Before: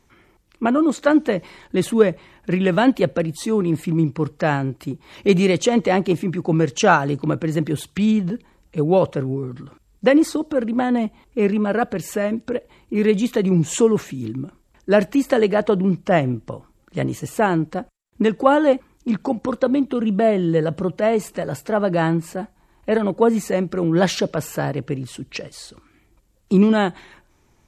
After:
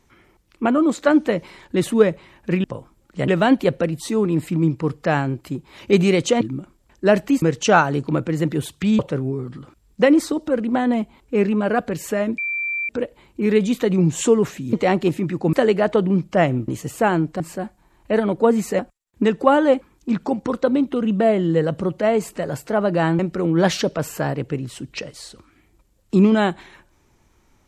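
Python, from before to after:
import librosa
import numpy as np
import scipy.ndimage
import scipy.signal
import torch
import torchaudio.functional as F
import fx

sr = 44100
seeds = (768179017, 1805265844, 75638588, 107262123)

y = fx.edit(x, sr, fx.swap(start_s=5.77, length_s=0.8, other_s=14.26, other_length_s=1.01),
    fx.cut(start_s=8.14, length_s=0.89),
    fx.insert_tone(at_s=12.42, length_s=0.51, hz=2350.0, db=-21.5),
    fx.move(start_s=16.42, length_s=0.64, to_s=2.64),
    fx.move(start_s=22.18, length_s=1.39, to_s=17.78), tone=tone)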